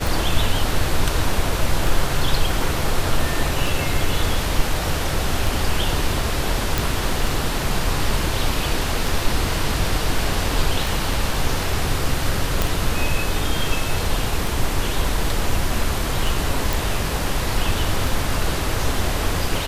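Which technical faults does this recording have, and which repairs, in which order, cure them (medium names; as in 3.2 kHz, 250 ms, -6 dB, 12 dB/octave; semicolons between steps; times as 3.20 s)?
tick 33 1/3 rpm
6.78 s: pop
12.62 s: pop
16.73 s: pop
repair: de-click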